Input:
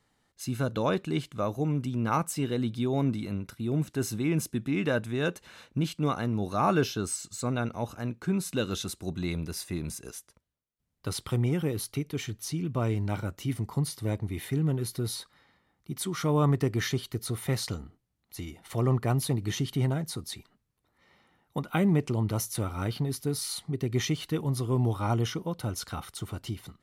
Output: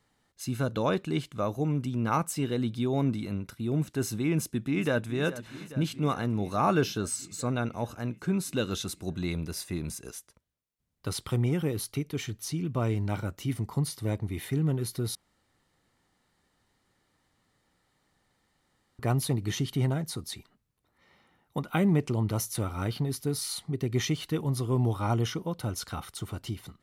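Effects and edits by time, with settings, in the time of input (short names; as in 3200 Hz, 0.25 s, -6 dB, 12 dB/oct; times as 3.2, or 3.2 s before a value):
4.34–5.15 echo throw 0.42 s, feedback 75%, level -14.5 dB
15.15–18.99 room tone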